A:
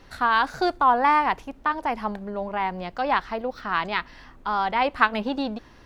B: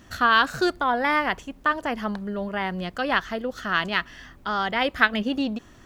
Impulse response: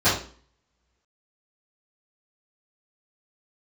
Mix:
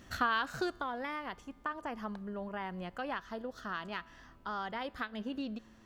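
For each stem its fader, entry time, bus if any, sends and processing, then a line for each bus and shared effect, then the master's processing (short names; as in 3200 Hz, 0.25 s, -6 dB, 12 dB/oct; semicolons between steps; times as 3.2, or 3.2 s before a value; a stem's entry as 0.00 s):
-11.0 dB, 0.00 s, no send, compressor, threshold -29 dBFS, peak gain reduction 16 dB
-0.5 dB, 0.00 s, no send, compressor 4:1, threshold -22 dBFS, peak gain reduction 9.5 dB; auto duck -9 dB, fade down 1.20 s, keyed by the first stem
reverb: off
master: resonator 110 Hz, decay 1.9 s, mix 40%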